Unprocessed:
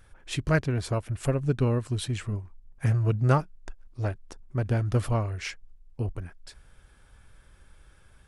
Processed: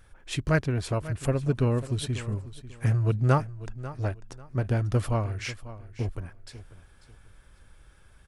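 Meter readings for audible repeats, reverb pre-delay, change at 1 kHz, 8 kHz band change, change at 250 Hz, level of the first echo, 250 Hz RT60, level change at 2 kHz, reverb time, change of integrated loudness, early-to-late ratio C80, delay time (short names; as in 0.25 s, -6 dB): 2, none, 0.0 dB, 0.0 dB, 0.0 dB, -15.5 dB, none, 0.0 dB, none, 0.0 dB, none, 0.543 s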